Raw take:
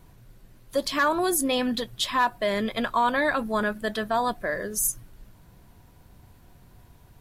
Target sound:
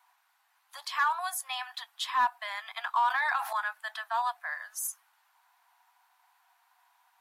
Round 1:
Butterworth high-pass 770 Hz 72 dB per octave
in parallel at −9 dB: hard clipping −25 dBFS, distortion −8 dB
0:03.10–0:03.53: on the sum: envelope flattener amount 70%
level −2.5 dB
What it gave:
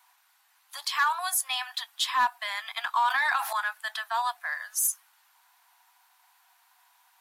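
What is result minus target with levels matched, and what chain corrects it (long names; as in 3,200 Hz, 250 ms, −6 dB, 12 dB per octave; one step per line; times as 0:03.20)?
4,000 Hz band +3.5 dB
Butterworth high-pass 770 Hz 72 dB per octave
high-shelf EQ 2,200 Hz −10 dB
in parallel at −9 dB: hard clipping −25 dBFS, distortion −11 dB
0:03.10–0:03.53: on the sum: envelope flattener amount 70%
level −2.5 dB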